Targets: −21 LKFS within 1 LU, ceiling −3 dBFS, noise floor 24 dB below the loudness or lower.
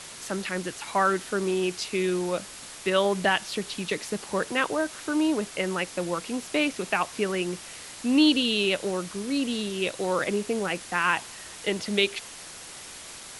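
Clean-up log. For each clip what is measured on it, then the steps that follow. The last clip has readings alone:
background noise floor −43 dBFS; target noise floor −51 dBFS; integrated loudness −27.0 LKFS; sample peak −7.5 dBFS; target loudness −21.0 LKFS
→ noise reduction from a noise print 8 dB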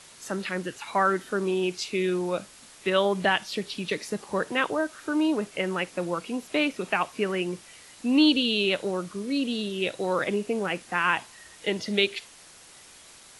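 background noise floor −51 dBFS; integrated loudness −27.0 LKFS; sample peak −8.0 dBFS; target loudness −21.0 LKFS
→ level +6 dB
brickwall limiter −3 dBFS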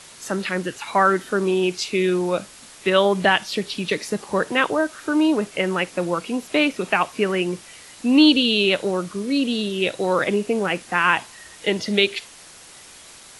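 integrated loudness −21.0 LKFS; sample peak −3.0 dBFS; background noise floor −45 dBFS

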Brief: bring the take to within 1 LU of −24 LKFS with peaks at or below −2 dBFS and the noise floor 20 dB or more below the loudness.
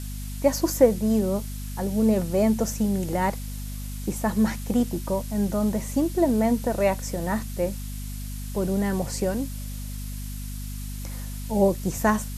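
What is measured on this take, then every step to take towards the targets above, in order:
mains hum 50 Hz; hum harmonics up to 250 Hz; level of the hum −31 dBFS; background noise floor −33 dBFS; target noise floor −46 dBFS; integrated loudness −26.0 LKFS; sample peak −5.0 dBFS; target loudness −24.0 LKFS
→ mains-hum notches 50/100/150/200/250 Hz
noise reduction from a noise print 13 dB
level +2 dB

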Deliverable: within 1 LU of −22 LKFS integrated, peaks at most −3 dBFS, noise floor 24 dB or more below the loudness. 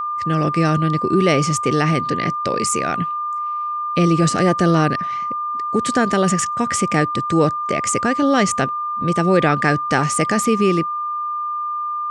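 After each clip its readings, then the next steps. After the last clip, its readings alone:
interfering tone 1,200 Hz; level of the tone −21 dBFS; integrated loudness −18.5 LKFS; sample peak −3.0 dBFS; target loudness −22.0 LKFS
→ notch filter 1,200 Hz, Q 30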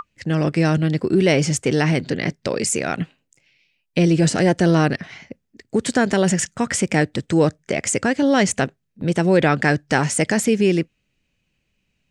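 interfering tone none found; integrated loudness −19.5 LKFS; sample peak −4.5 dBFS; target loudness −22.0 LKFS
→ level −2.5 dB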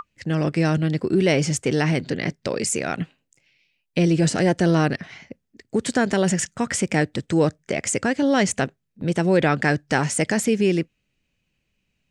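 integrated loudness −22.0 LKFS; sample peak −7.0 dBFS; background noise floor −75 dBFS

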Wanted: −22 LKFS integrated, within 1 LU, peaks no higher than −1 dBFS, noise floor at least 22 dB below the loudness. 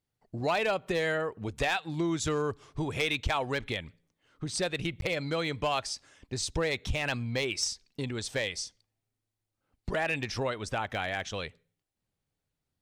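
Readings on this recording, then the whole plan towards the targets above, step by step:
share of clipped samples 0.2%; peaks flattened at −20.5 dBFS; number of dropouts 1; longest dropout 12 ms; integrated loudness −32.0 LKFS; sample peak −20.5 dBFS; target loudness −22.0 LKFS
→ clipped peaks rebuilt −20.5 dBFS
repair the gap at 0:05.01, 12 ms
level +10 dB

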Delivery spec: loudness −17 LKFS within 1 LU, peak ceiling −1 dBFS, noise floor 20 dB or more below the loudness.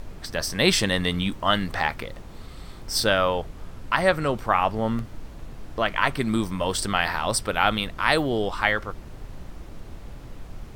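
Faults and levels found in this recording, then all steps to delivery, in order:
number of dropouts 1; longest dropout 1.6 ms; background noise floor −41 dBFS; target noise floor −44 dBFS; integrated loudness −24.0 LKFS; sample peak −3.0 dBFS; target loudness −17.0 LKFS
→ repair the gap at 0:04.99, 1.6 ms
noise reduction from a noise print 6 dB
level +7 dB
brickwall limiter −1 dBFS

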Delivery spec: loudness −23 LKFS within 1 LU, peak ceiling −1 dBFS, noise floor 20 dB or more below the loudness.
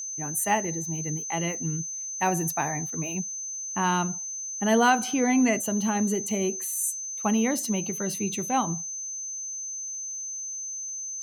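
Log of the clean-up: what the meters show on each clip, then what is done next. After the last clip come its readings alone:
crackle rate 15 per second; interfering tone 6,200 Hz; level of the tone −32 dBFS; integrated loudness −27.0 LKFS; sample peak −10.0 dBFS; target loudness −23.0 LKFS
→ click removal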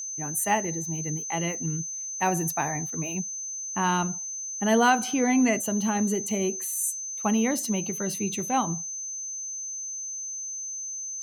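crackle rate 0 per second; interfering tone 6,200 Hz; level of the tone −32 dBFS
→ notch filter 6,200 Hz, Q 30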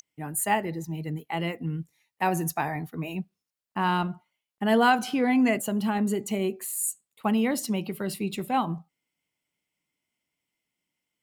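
interfering tone none found; integrated loudness −27.5 LKFS; sample peak −11.0 dBFS; target loudness −23.0 LKFS
→ level +4.5 dB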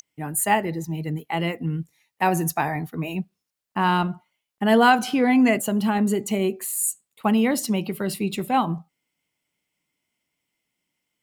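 integrated loudness −23.0 LKFS; sample peak −6.5 dBFS; background noise floor −83 dBFS

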